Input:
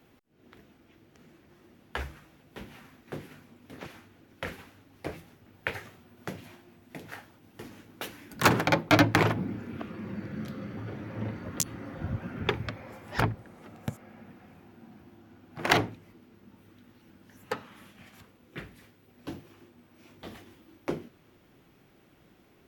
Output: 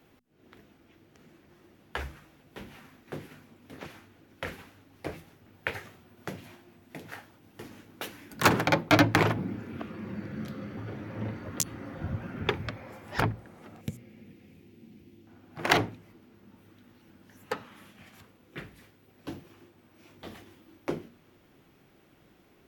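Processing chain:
0:13.81–0:15.27: flat-topped bell 1,000 Hz −14.5 dB
mains-hum notches 60/120/180/240 Hz

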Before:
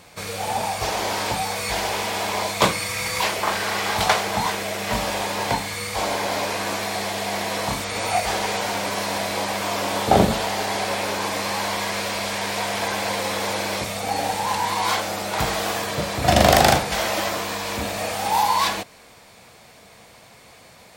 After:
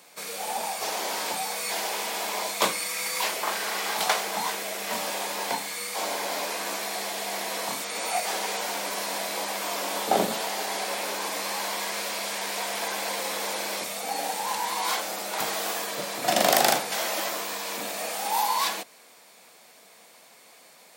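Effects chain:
Bessel high-pass filter 280 Hz, order 6
high-shelf EQ 7,600 Hz +9.5 dB
level −6 dB

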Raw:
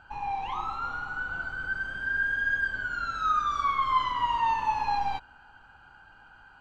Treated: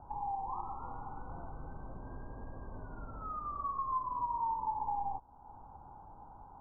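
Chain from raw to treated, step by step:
Butterworth low-pass 1,100 Hz 72 dB per octave
downward compressor 2 to 1, threshold −51 dBFS, peak gain reduction 16 dB
level +6 dB

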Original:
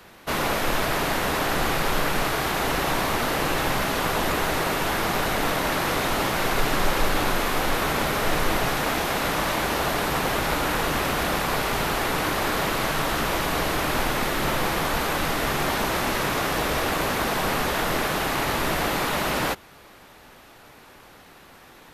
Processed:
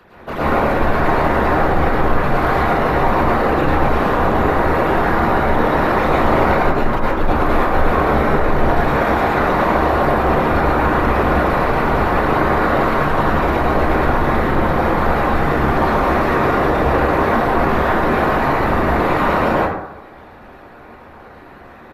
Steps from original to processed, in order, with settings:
spectral envelope exaggerated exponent 2
0:06.01–0:07.67: compressor whose output falls as the input rises −23 dBFS, ratio −0.5
far-end echo of a speakerphone 90 ms, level −11 dB
dense smooth reverb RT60 0.82 s, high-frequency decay 0.35×, pre-delay 95 ms, DRR −8 dB

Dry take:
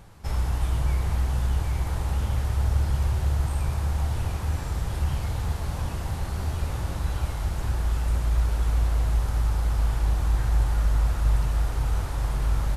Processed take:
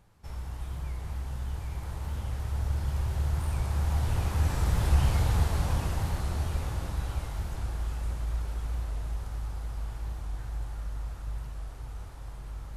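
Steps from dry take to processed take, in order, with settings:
source passing by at 0:05.11, 7 m/s, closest 6 metres
wow of a warped record 45 rpm, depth 100 cents
level +3 dB

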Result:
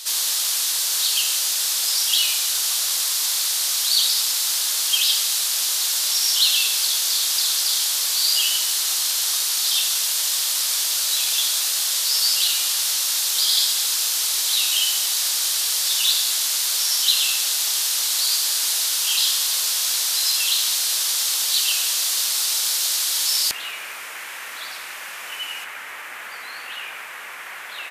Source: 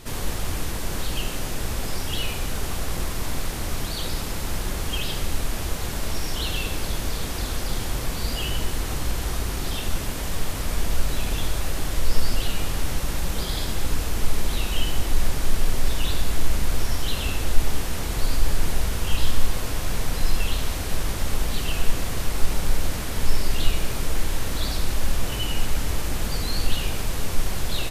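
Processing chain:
high-pass filter 1,400 Hz 12 dB per octave
high shelf with overshoot 3,000 Hz +9.5 dB, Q 1.5, from 0:23.51 −7 dB, from 0:25.64 −12.5 dB
level +5 dB

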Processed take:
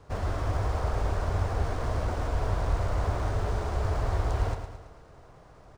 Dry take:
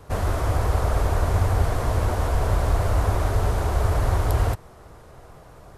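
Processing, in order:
elliptic low-pass filter 10,000 Hz
repeating echo 110 ms, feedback 53%, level −8 dB
linearly interpolated sample-rate reduction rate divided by 3×
level −6 dB

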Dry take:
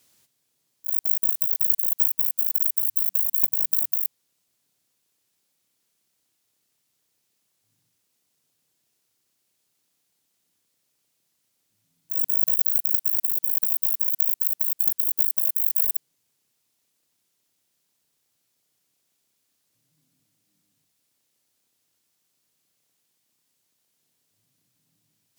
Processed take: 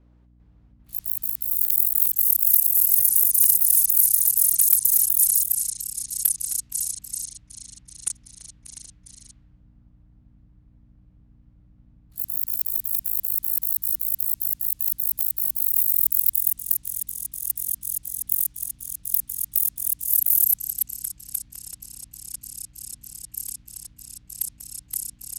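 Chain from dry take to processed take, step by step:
mains hum 60 Hz, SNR 34 dB
delay with pitch and tempo change per echo 397 ms, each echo −4 semitones, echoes 3
low-pass that shuts in the quiet parts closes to 900 Hz, open at −21 dBFS
level +7 dB

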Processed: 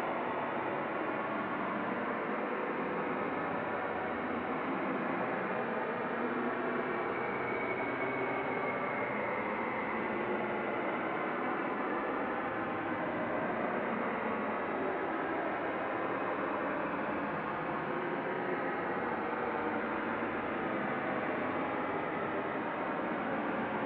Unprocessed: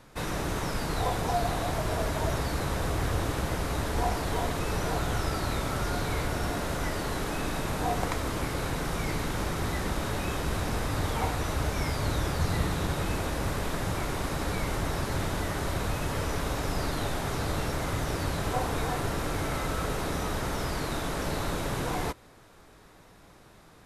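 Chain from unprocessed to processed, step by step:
single-sideband voice off tune −60 Hz 280–2,600 Hz
extreme stretch with random phases 20×, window 0.10 s, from 0:14.17

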